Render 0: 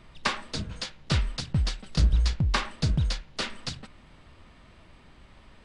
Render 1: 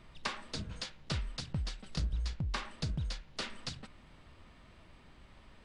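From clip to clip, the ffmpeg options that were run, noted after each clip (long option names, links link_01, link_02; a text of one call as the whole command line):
ffmpeg -i in.wav -af "acompressor=threshold=-33dB:ratio=2,volume=-4.5dB" out.wav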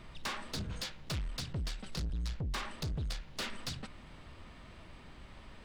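ffmpeg -i in.wav -af "asoftclip=type=tanh:threshold=-38.5dB,volume=5.5dB" out.wav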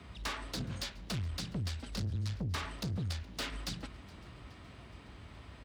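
ffmpeg -i in.wav -filter_complex "[0:a]afreqshift=43,asplit=5[link_01][link_02][link_03][link_04][link_05];[link_02]adelay=419,afreqshift=69,volume=-23.5dB[link_06];[link_03]adelay=838,afreqshift=138,volume=-28.2dB[link_07];[link_04]adelay=1257,afreqshift=207,volume=-33dB[link_08];[link_05]adelay=1676,afreqshift=276,volume=-37.7dB[link_09];[link_01][link_06][link_07][link_08][link_09]amix=inputs=5:normalize=0" out.wav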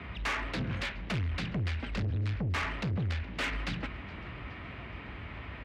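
ffmpeg -i in.wav -af "lowpass=frequency=2300:width_type=q:width=2.1,asoftclip=type=tanh:threshold=-35.5dB,volume=8dB" out.wav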